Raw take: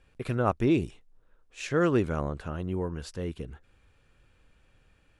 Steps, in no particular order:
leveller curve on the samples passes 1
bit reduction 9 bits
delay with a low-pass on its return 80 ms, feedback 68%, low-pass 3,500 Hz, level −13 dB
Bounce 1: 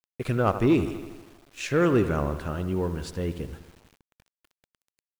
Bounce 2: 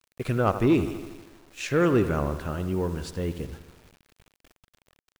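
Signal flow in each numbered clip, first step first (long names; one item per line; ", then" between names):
delay with a low-pass on its return, then leveller curve on the samples, then bit reduction
delay with a low-pass on its return, then bit reduction, then leveller curve on the samples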